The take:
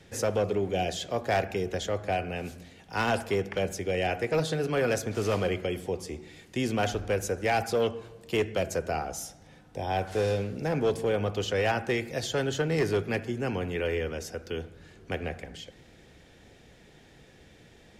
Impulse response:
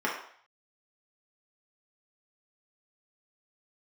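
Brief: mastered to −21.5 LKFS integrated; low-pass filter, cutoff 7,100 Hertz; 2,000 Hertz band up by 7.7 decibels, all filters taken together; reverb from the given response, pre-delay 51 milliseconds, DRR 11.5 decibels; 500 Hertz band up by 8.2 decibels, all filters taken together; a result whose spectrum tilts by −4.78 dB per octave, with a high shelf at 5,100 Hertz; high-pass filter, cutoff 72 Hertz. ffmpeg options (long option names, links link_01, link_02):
-filter_complex "[0:a]highpass=72,lowpass=7100,equalizer=frequency=500:width_type=o:gain=9,equalizer=frequency=2000:width_type=o:gain=8.5,highshelf=frequency=5100:gain=5.5,asplit=2[link_01][link_02];[1:a]atrim=start_sample=2205,adelay=51[link_03];[link_02][link_03]afir=irnorm=-1:irlink=0,volume=-22.5dB[link_04];[link_01][link_04]amix=inputs=2:normalize=0,volume=1dB"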